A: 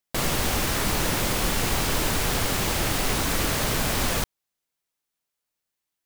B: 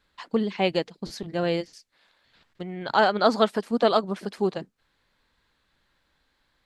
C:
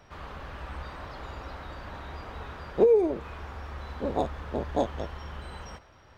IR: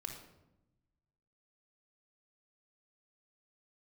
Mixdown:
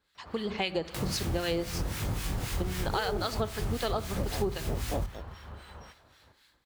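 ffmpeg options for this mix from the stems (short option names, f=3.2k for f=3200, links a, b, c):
-filter_complex "[0:a]acrossover=split=220[a][b];[b]acompressor=threshold=-35dB:ratio=6[c];[a][c]amix=inputs=2:normalize=0,asubboost=boost=2:cutoff=120,flanger=delay=19:depth=7.8:speed=0.75,adelay=800,volume=2.5dB,asplit=2[d][e];[e]volume=-6.5dB[f];[1:a]highshelf=f=3.5k:g=8.5,dynaudnorm=f=270:g=3:m=11dB,volume=-6dB,asplit=2[g][h];[h]volume=-5.5dB[i];[2:a]acrusher=bits=7:mode=log:mix=0:aa=0.000001,adelay=150,volume=-3dB[j];[3:a]atrim=start_sample=2205[k];[f][i]amix=inputs=2:normalize=0[l];[l][k]afir=irnorm=-1:irlink=0[m];[d][g][j][m]amix=inputs=4:normalize=0,highpass=49,acrossover=split=1300[n][o];[n]aeval=exprs='val(0)*(1-0.7/2+0.7/2*cos(2*PI*3.8*n/s))':c=same[p];[o]aeval=exprs='val(0)*(1-0.7/2-0.7/2*cos(2*PI*3.8*n/s))':c=same[q];[p][q]amix=inputs=2:normalize=0,acompressor=threshold=-27dB:ratio=6"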